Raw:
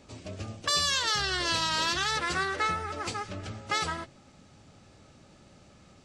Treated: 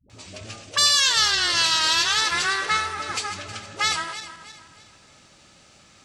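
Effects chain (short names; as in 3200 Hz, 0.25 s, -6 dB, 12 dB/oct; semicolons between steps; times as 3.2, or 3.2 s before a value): regenerating reverse delay 0.158 s, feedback 60%, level -11 dB; tilt shelf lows -7 dB; dispersion highs, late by 99 ms, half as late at 350 Hz; gain +3 dB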